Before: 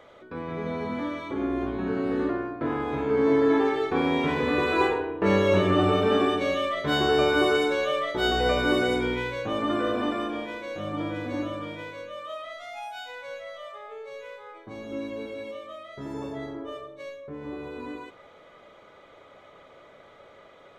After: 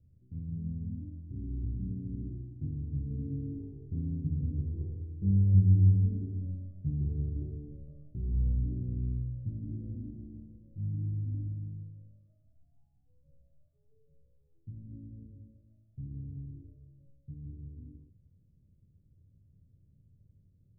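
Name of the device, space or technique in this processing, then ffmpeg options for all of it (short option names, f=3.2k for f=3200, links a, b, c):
the neighbour's flat through the wall: -af "lowpass=f=150:w=0.5412,lowpass=f=150:w=1.3066,equalizer=f=88:t=o:w=0.51:g=7,volume=4.5dB"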